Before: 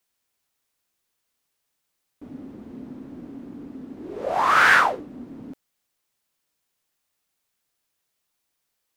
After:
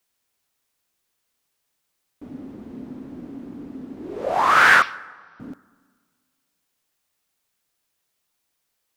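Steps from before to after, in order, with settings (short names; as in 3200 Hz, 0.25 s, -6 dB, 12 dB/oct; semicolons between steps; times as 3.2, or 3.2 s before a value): 4.82–5.4 brick-wall FIR band-pass 2000–6000 Hz; plate-style reverb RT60 1.7 s, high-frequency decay 0.5×, DRR 19 dB; gain +2 dB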